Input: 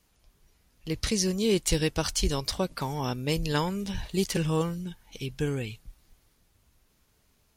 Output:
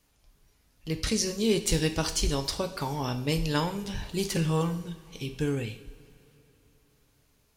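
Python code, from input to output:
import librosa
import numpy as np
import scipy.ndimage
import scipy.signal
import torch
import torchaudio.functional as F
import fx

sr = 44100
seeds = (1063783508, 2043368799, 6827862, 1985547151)

y = fx.rev_double_slope(x, sr, seeds[0], early_s=0.53, late_s=3.6, knee_db=-19, drr_db=6.5)
y = F.gain(torch.from_numpy(y), -1.0).numpy()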